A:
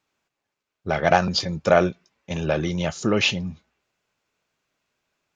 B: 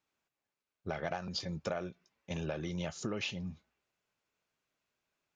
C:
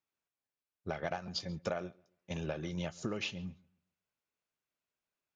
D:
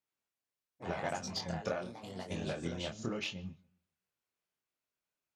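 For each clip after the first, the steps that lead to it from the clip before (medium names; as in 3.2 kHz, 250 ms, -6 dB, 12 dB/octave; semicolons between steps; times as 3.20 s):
compression 10:1, threshold -24 dBFS, peak gain reduction 13.5 dB; trim -9 dB
filtered feedback delay 137 ms, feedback 28%, low-pass 3.1 kHz, level -18 dB; upward expansion 1.5:1, over -52 dBFS; trim +1 dB
ever faster or slower copies 95 ms, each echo +3 st, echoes 3, each echo -6 dB; Chebyshev shaper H 7 -31 dB, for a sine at -19.5 dBFS; chorus 0.85 Hz, delay 20 ms, depth 6.7 ms; trim +3.5 dB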